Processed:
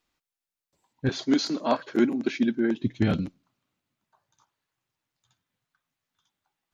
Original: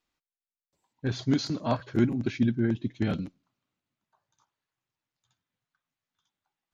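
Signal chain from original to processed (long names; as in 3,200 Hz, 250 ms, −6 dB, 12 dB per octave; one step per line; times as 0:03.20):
0:01.09–0:02.82: high-pass filter 240 Hz 24 dB per octave
level +4.5 dB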